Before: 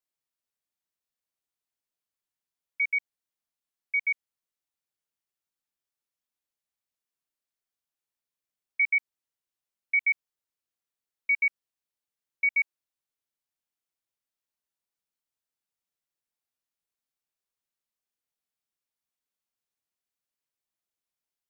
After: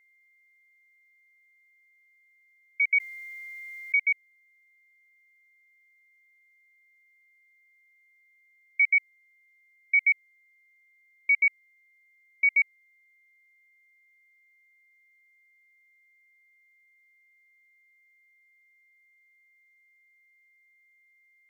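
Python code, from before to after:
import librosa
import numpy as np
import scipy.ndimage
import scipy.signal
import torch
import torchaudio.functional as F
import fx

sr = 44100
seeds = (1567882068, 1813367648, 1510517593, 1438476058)

y = x + 10.0 ** (-64.0 / 20.0) * np.sin(2.0 * np.pi * 2100.0 * np.arange(len(x)) / sr)
y = fx.env_flatten(y, sr, amount_pct=50, at=(2.91, 3.95), fade=0.02)
y = F.gain(torch.from_numpy(y), 2.5).numpy()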